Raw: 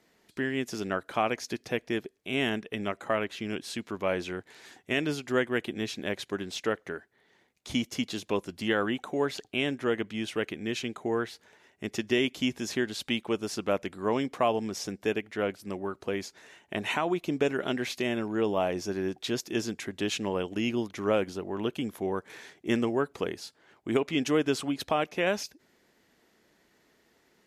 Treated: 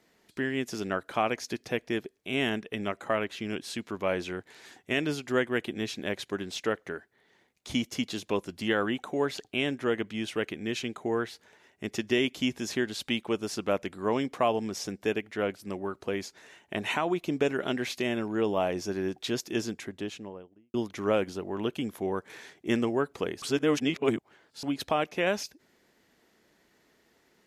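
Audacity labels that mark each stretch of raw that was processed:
19.510000	20.740000	studio fade out
23.420000	24.630000	reverse

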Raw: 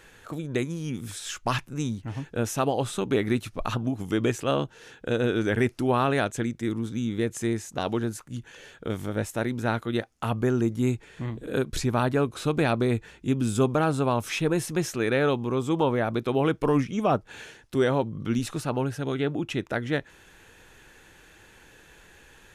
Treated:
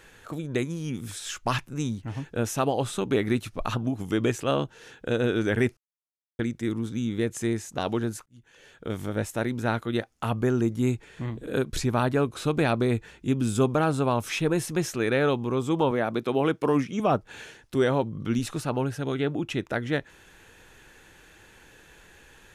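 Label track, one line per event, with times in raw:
5.770000	6.390000	mute
8.260000	9.020000	fade in
15.910000	17.000000	high-pass 150 Hz

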